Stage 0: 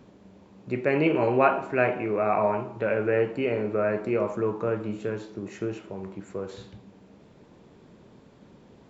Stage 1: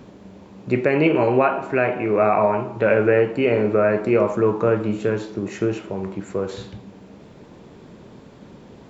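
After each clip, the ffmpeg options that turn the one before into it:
ffmpeg -i in.wav -af "alimiter=limit=-15.5dB:level=0:latency=1:release=462,volume=9dB" out.wav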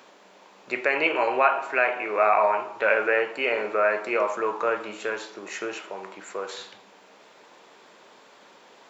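ffmpeg -i in.wav -af "highpass=850,volume=2.5dB" out.wav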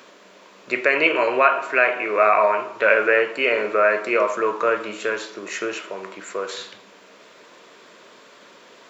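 ffmpeg -i in.wav -af "equalizer=frequency=820:width_type=o:width=0.21:gain=-14,volume=5.5dB" out.wav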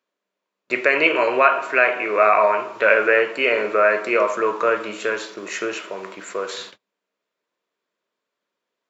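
ffmpeg -i in.wav -af "agate=range=-35dB:threshold=-39dB:ratio=16:detection=peak,volume=1dB" out.wav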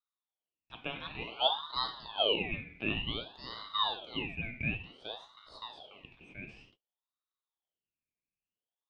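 ffmpeg -i in.wav -af "bandpass=frequency=1300:width_type=q:width=7.3:csg=0,aeval=exprs='val(0)*sin(2*PI*1800*n/s+1800*0.4/0.55*sin(2*PI*0.55*n/s))':channel_layout=same,volume=-4.5dB" out.wav

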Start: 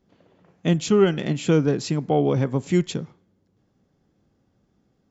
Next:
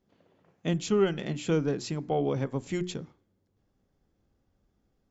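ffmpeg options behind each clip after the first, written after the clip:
ffmpeg -i in.wav -af "bandreject=frequency=60:width_type=h:width=6,bandreject=frequency=120:width_type=h:width=6,bandreject=frequency=180:width_type=h:width=6,bandreject=frequency=240:width_type=h:width=6,bandreject=frequency=300:width_type=h:width=6,bandreject=frequency=360:width_type=h:width=6,asubboost=boost=5.5:cutoff=62,volume=-6.5dB" out.wav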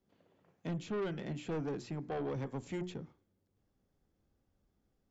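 ffmpeg -i in.wav -filter_complex "[0:a]acrossover=split=160|2700[link_01][link_02][link_03];[link_03]acompressor=threshold=-52dB:ratio=6[link_04];[link_01][link_02][link_04]amix=inputs=3:normalize=0,asoftclip=type=tanh:threshold=-27.5dB,volume=-5dB" out.wav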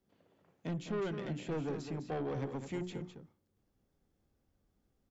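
ffmpeg -i in.wav -af "aecho=1:1:206:0.376" out.wav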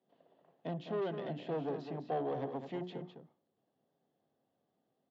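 ffmpeg -i in.wav -af "highpass=frequency=160:width=0.5412,highpass=frequency=160:width=1.3066,equalizer=frequency=200:width_type=q:width=4:gain=-7,equalizer=frequency=320:width_type=q:width=4:gain=-4,equalizer=frequency=680:width_type=q:width=4:gain=8,equalizer=frequency=1400:width_type=q:width=4:gain=-7,equalizer=frequency=2300:width_type=q:width=4:gain=-10,lowpass=frequency=3800:width=0.5412,lowpass=frequency=3800:width=1.3066,volume=1.5dB" out.wav

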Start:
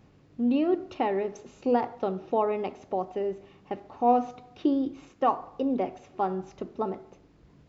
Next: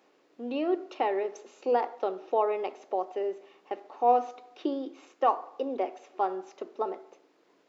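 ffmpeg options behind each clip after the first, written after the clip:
ffmpeg -i in.wav -af "highpass=frequency=350:width=0.5412,highpass=frequency=350:width=1.3066" out.wav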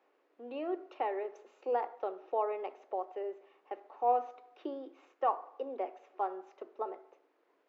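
ffmpeg -i in.wav -filter_complex "[0:a]acrossover=split=310 2700:gain=0.126 1 0.224[link_01][link_02][link_03];[link_01][link_02][link_03]amix=inputs=3:normalize=0,volume=-5.5dB" out.wav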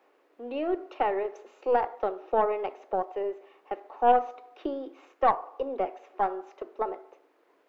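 ffmpeg -i in.wav -af "aeval=exprs='0.141*(cos(1*acos(clip(val(0)/0.141,-1,1)))-cos(1*PI/2))+0.0112*(cos(4*acos(clip(val(0)/0.141,-1,1)))-cos(4*PI/2))':channel_layout=same,volume=7.5dB" out.wav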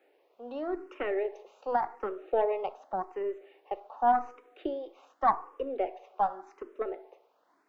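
ffmpeg -i in.wav -filter_complex "[0:a]asplit=2[link_01][link_02];[link_02]afreqshift=0.87[link_03];[link_01][link_03]amix=inputs=2:normalize=1" out.wav

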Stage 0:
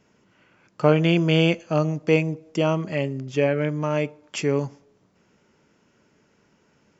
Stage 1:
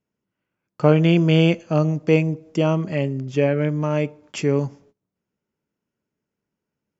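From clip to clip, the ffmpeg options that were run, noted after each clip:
ffmpeg -i in.wav -af "agate=range=-23dB:threshold=-53dB:ratio=16:detection=peak,lowshelf=frequency=430:gain=6,volume=-1dB" out.wav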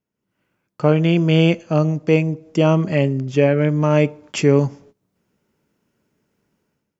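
ffmpeg -i in.wav -af "dynaudnorm=framelen=140:gausssize=5:maxgain=15dB,volume=-1.5dB" out.wav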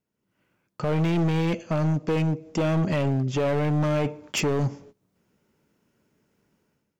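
ffmpeg -i in.wav -af "alimiter=limit=-10.5dB:level=0:latency=1:release=26,volume=20dB,asoftclip=hard,volume=-20dB" out.wav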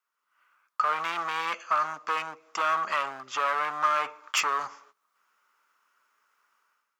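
ffmpeg -i in.wav -af "highpass=frequency=1200:width_type=q:width=6" out.wav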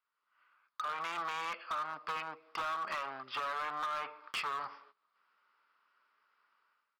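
ffmpeg -i in.wav -af "aresample=11025,aresample=44100,acompressor=threshold=-28dB:ratio=8,volume=28.5dB,asoftclip=hard,volume=-28.5dB,volume=-3.5dB" out.wav

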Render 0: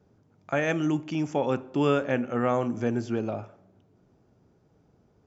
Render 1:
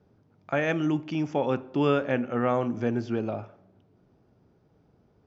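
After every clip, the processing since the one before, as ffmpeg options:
ffmpeg -i in.wav -af "lowpass=frequency=5400:width=0.5412,lowpass=frequency=5400:width=1.3066" out.wav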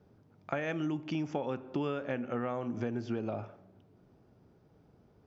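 ffmpeg -i in.wav -af "acompressor=threshold=-30dB:ratio=12" out.wav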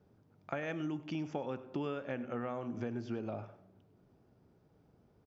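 ffmpeg -i in.wav -af "aecho=1:1:101:0.141,volume=-4dB" out.wav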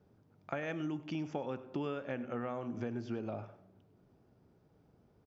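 ffmpeg -i in.wav -af anull out.wav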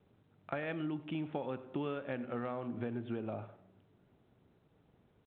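ffmpeg -i in.wav -ar 8000 -c:a adpcm_g726 -b:a 40k out.wav

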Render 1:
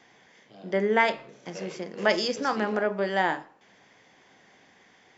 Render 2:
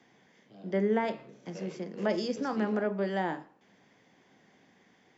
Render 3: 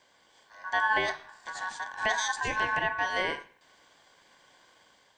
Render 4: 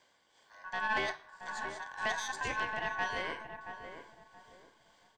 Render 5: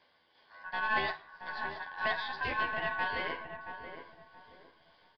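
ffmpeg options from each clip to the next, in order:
ffmpeg -i in.wav -filter_complex "[0:a]equalizer=frequency=200:width_type=o:width=2.2:gain=9,acrossover=split=220|980[link_01][link_02][link_03];[link_03]alimiter=limit=-22dB:level=0:latency=1:release=123[link_04];[link_01][link_02][link_04]amix=inputs=3:normalize=0,volume=-8dB" out.wav
ffmpeg -i in.wav -af "highshelf=frequency=3200:gain=11,aeval=exprs='val(0)*sin(2*PI*1300*n/s)':channel_layout=same,dynaudnorm=framelen=150:gausssize=5:maxgain=3.5dB" out.wav
ffmpeg -i in.wav -filter_complex "[0:a]aeval=exprs='(tanh(8.91*val(0)+0.4)-tanh(0.4))/8.91':channel_layout=same,tremolo=f=2:d=0.41,asplit=2[link_01][link_02];[link_02]adelay=676,lowpass=frequency=1100:poles=1,volume=-7dB,asplit=2[link_03][link_04];[link_04]adelay=676,lowpass=frequency=1100:poles=1,volume=0.33,asplit=2[link_05][link_06];[link_06]adelay=676,lowpass=frequency=1100:poles=1,volume=0.33,asplit=2[link_07][link_08];[link_08]adelay=676,lowpass=frequency=1100:poles=1,volume=0.33[link_09];[link_01][link_03][link_05][link_07][link_09]amix=inputs=5:normalize=0,volume=-2.5dB" out.wav
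ffmpeg -i in.wav -filter_complex "[0:a]asplit=2[link_01][link_02];[link_02]adelay=12,volume=-4dB[link_03];[link_01][link_03]amix=inputs=2:normalize=0,aresample=11025,aresample=44100" out.wav

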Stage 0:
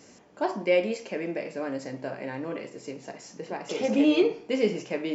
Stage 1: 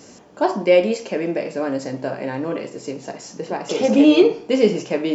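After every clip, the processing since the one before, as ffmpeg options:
ffmpeg -i in.wav -af "equalizer=frequency=2100:width_type=o:width=0.62:gain=-5,volume=9dB" out.wav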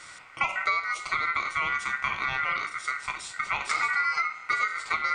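ffmpeg -i in.wav -af "aeval=exprs='val(0)*sin(2*PI*1700*n/s)':channel_layout=same,equalizer=frequency=250:width=7.9:gain=-5,acompressor=threshold=-24dB:ratio=16,volume=1.5dB" out.wav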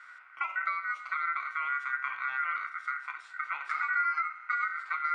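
ffmpeg -i in.wav -af "bandpass=frequency=1500:width_type=q:width=4.3:csg=0,volume=1.5dB" out.wav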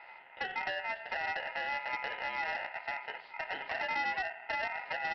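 ffmpeg -i in.wav -af "aeval=exprs='val(0)*sin(2*PI*580*n/s)':channel_layout=same,aresample=11025,asoftclip=type=tanh:threshold=-28.5dB,aresample=44100,volume=1.5dB" out.wav

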